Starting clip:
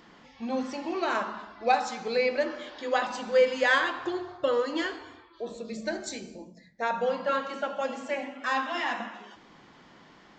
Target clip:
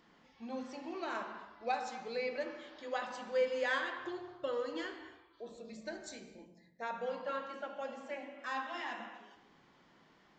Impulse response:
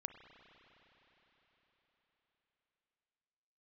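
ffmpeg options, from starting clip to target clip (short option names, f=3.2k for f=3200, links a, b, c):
-filter_complex "[0:a]asettb=1/sr,asplit=3[a][b][c];[a]atrim=end=7.314[d];[b]atrim=start=7.31:end=8.39,asetpts=PTS-STARTPTS,afade=t=in:d=0.004:c=qsin,afade=t=out:st=1.076:d=0.004:c=qsin,highshelf=f=6.2k:g=-6.5[e];[c]atrim=start=8.386[f];[d][e]acrossfade=d=0.004:c1=hsin:c2=qsin[g];[g][f]acrossfade=d=0.004:c1=qsin:c2=hsin[h];[1:a]atrim=start_sample=2205,afade=t=out:st=0.33:d=0.01,atrim=end_sample=14994[i];[h][i]afir=irnorm=-1:irlink=0,volume=-7dB"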